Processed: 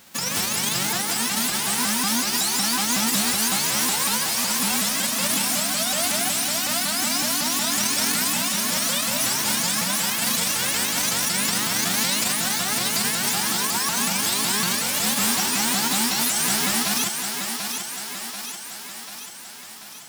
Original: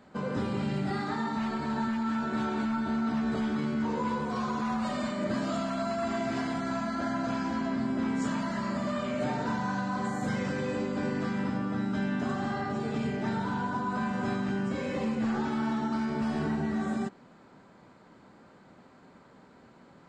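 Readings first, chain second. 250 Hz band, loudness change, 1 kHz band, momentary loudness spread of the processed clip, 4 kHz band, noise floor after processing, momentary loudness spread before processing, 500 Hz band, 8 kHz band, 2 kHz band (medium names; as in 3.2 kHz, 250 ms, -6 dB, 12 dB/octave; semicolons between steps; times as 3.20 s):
-1.0 dB, +10.5 dB, +5.0 dB, 8 LU, +24.0 dB, -38 dBFS, 2 LU, 0.0 dB, +33.0 dB, +11.5 dB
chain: formants flattened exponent 0.1; thinning echo 738 ms, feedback 61%, high-pass 200 Hz, level -6 dB; vibrato with a chosen wave saw up 5.4 Hz, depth 250 cents; trim +6.5 dB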